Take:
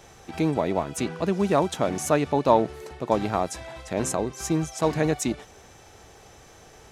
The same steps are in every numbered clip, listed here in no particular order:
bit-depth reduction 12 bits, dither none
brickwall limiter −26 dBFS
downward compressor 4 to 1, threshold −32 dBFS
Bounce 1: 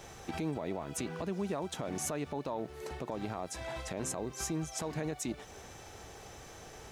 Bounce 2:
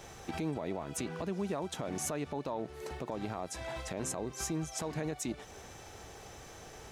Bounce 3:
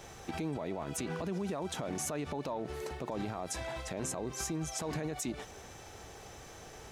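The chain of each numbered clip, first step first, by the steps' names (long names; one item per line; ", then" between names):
downward compressor, then bit-depth reduction, then brickwall limiter
bit-depth reduction, then downward compressor, then brickwall limiter
bit-depth reduction, then brickwall limiter, then downward compressor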